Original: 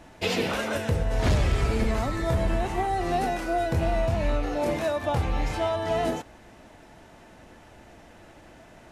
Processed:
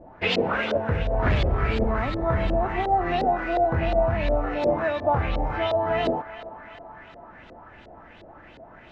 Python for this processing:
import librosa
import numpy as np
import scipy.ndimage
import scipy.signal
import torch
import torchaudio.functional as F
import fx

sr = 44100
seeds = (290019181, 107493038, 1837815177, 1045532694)

y = fx.echo_banded(x, sr, ms=385, feedback_pct=76, hz=1500.0, wet_db=-12.5)
y = fx.filter_lfo_lowpass(y, sr, shape='saw_up', hz=2.8, low_hz=490.0, high_hz=4100.0, q=2.7)